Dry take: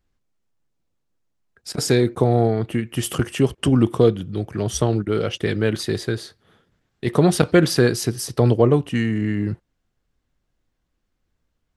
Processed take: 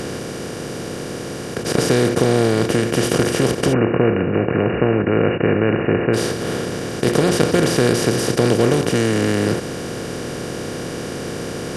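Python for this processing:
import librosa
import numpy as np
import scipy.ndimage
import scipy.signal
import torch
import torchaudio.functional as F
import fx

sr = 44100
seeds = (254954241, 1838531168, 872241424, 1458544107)

y = fx.bin_compress(x, sr, power=0.2)
y = fx.brickwall_lowpass(y, sr, high_hz=2900.0, at=(3.72, 6.13), fade=0.02)
y = y * 10.0 ** (-6.5 / 20.0)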